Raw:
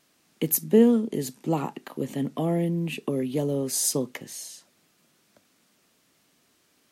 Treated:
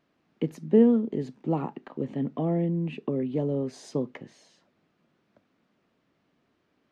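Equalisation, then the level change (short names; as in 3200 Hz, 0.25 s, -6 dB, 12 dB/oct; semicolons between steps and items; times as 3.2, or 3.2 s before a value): tape spacing loss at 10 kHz 35 dB; 0.0 dB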